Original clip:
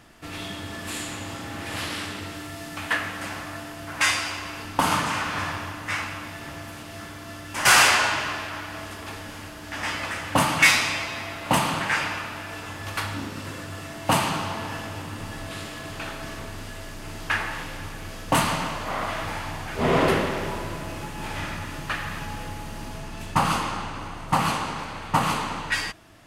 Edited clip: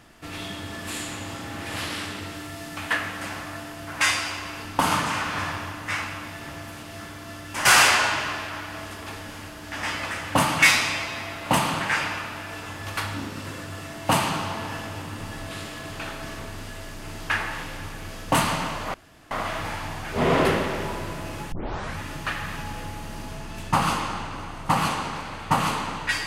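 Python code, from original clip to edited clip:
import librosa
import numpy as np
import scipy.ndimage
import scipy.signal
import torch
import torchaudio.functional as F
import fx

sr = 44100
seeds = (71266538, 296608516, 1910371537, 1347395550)

y = fx.edit(x, sr, fx.insert_room_tone(at_s=18.94, length_s=0.37),
    fx.tape_start(start_s=21.15, length_s=0.46), tone=tone)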